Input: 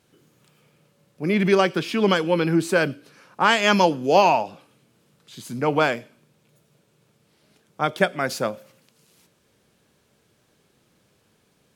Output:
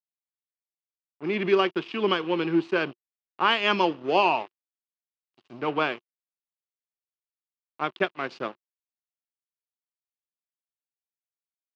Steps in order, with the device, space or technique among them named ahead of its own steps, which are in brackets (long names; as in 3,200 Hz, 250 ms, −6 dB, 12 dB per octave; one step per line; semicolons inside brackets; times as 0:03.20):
blown loudspeaker (dead-zone distortion −33.5 dBFS; loudspeaker in its box 150–4,500 Hz, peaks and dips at 190 Hz −3 dB, 360 Hz +8 dB, 550 Hz −3 dB, 1,100 Hz +6 dB, 2,800 Hz +8 dB)
level −6 dB